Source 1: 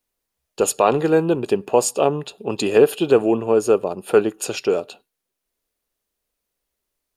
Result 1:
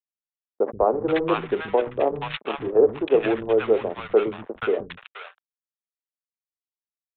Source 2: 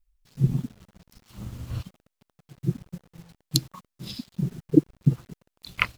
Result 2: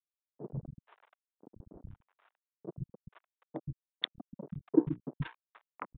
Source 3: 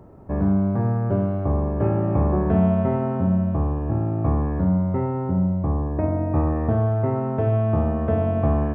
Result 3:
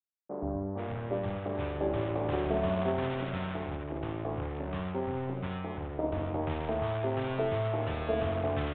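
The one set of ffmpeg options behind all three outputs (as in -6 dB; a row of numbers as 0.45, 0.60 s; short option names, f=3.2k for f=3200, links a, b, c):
-filter_complex "[0:a]equalizer=f=89:t=o:w=2.1:g=4,bandreject=f=60:t=h:w=6,bandreject=f=120:t=h:w=6,bandreject=f=180:t=h:w=6,bandreject=f=240:t=h:w=6,bandreject=f=300:t=h:w=6,bandreject=f=360:t=h:w=6,bandreject=f=420:t=h:w=6,bandreject=f=480:t=h:w=6,bandreject=f=540:t=h:w=6,bandreject=f=600:t=h:w=6,acrossover=split=300|480[a][b][c];[a]acompressor=threshold=-31dB:ratio=8[d];[d][b][c]amix=inputs=3:normalize=0,acrusher=samples=4:mix=1:aa=0.000001,adynamicsmooth=sensitivity=2:basefreq=550,aeval=exprs='sgn(val(0))*max(abs(val(0))-0.0251,0)':c=same,acrossover=split=210|1000[e][f][g];[e]adelay=130[h];[g]adelay=480[i];[h][f][i]amix=inputs=3:normalize=0,aresample=8000,aresample=44100"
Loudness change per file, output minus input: -4.0, -10.0, -11.0 LU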